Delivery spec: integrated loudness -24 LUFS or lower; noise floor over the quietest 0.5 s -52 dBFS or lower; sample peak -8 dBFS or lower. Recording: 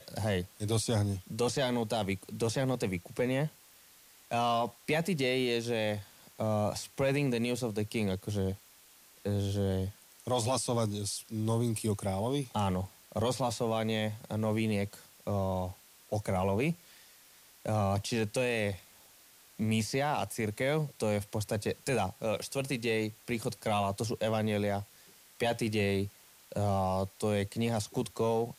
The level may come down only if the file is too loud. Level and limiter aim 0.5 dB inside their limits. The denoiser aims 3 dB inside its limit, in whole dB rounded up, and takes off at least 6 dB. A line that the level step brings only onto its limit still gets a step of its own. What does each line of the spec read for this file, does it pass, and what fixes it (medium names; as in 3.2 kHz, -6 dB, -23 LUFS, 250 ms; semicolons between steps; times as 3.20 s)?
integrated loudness -32.5 LUFS: pass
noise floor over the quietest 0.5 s -59 dBFS: pass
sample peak -19.0 dBFS: pass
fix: none needed